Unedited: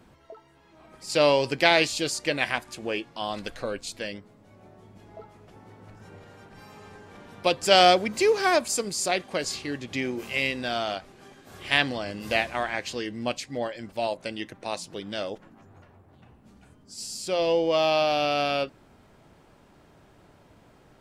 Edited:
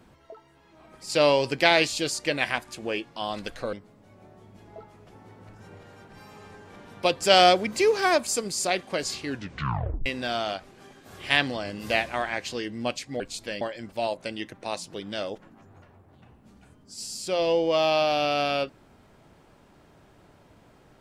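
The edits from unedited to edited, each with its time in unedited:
3.73–4.14 s: move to 13.61 s
9.69 s: tape stop 0.78 s

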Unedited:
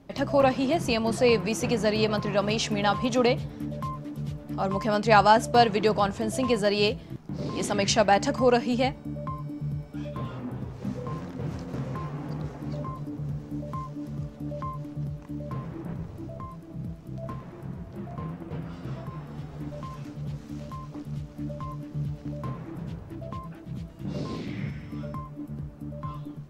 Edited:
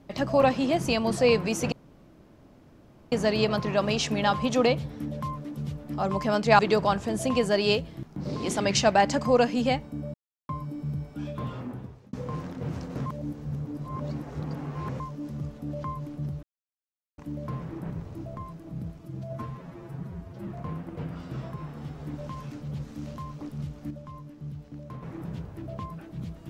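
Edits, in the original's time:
1.72 s: insert room tone 1.40 s
5.19–5.72 s: delete
9.27 s: insert silence 0.35 s
10.39–10.91 s: fade out
11.84–13.78 s: reverse
15.21 s: insert silence 0.75 s
17.02–18.01 s: stretch 1.5×
21.44–22.56 s: gain -7 dB

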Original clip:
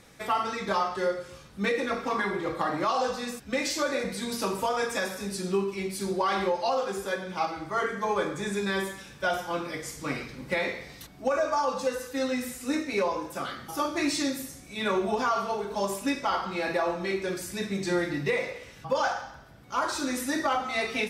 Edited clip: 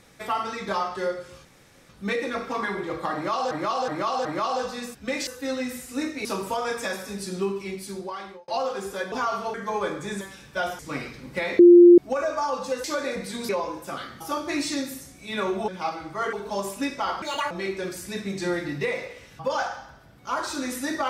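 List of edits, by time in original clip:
1.45 s: insert room tone 0.44 s
2.70–3.07 s: loop, 4 plays
3.72–4.37 s: swap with 11.99–12.97 s
5.72–6.60 s: fade out
7.24–7.89 s: swap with 15.16–15.58 s
8.56–8.88 s: delete
9.46–9.94 s: delete
10.74–11.13 s: bleep 349 Hz -7 dBFS
16.47–16.96 s: speed 170%

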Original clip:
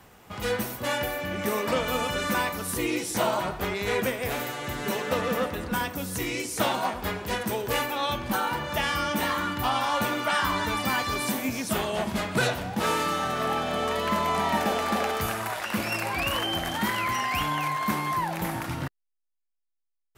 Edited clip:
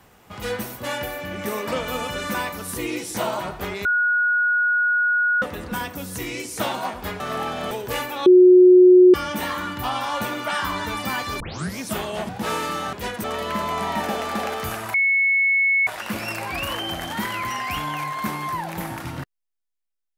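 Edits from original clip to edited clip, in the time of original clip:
3.85–5.42 s: bleep 1.45 kHz -16.5 dBFS
7.20–7.51 s: swap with 13.30–13.81 s
8.06–8.94 s: bleep 364 Hz -7 dBFS
11.20 s: tape start 0.38 s
12.09–12.66 s: delete
15.51 s: add tone 2.2 kHz -15.5 dBFS 0.93 s

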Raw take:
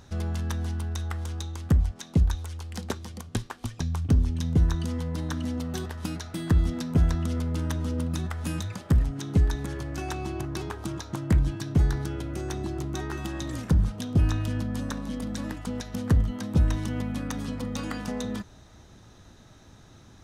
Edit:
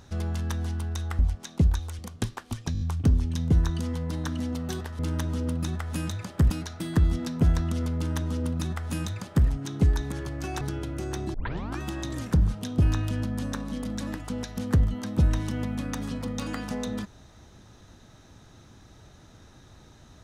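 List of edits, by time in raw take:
1.19–1.75 s: delete
2.55–3.12 s: delete
3.86 s: stutter 0.02 s, 5 plays
7.50–9.01 s: copy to 6.04 s
10.15–11.98 s: delete
12.71 s: tape start 0.46 s

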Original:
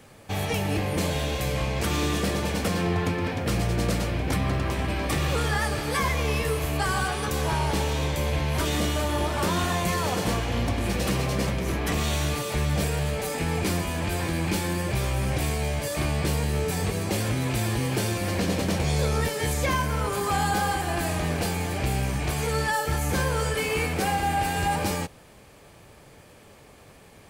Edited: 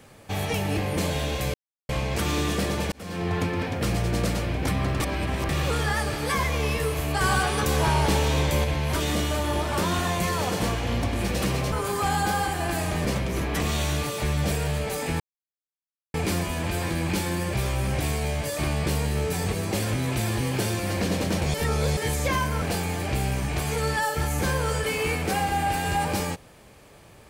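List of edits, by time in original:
1.54 s: insert silence 0.35 s
2.57–3.02 s: fade in
4.65–5.14 s: reverse
6.86–8.29 s: gain +3.5 dB
13.52 s: insert silence 0.94 s
18.92–19.35 s: reverse
20.00–21.33 s: move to 11.37 s

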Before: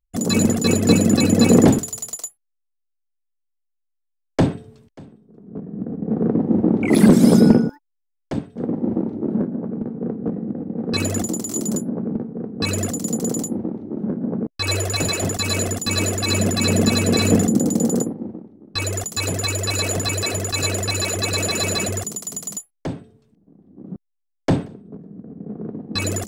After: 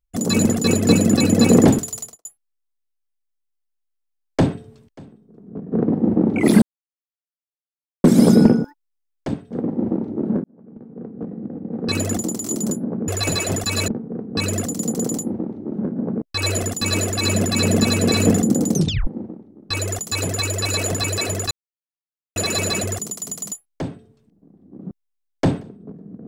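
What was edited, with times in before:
1.99–2.25 s: studio fade out
5.72–6.19 s: delete
7.09 s: insert silence 1.42 s
9.49–11.05 s: fade in
14.81–15.61 s: move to 12.13 s
17.77 s: tape stop 0.35 s
20.56–21.41 s: mute

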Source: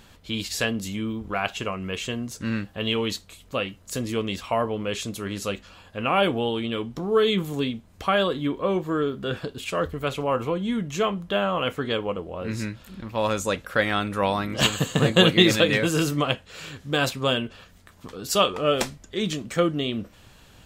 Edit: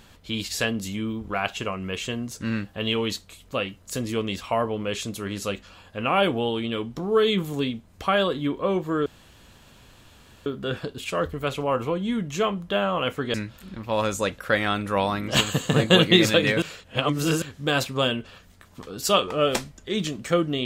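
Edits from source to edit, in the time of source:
9.06 s: insert room tone 1.40 s
11.94–12.60 s: delete
15.88–16.68 s: reverse

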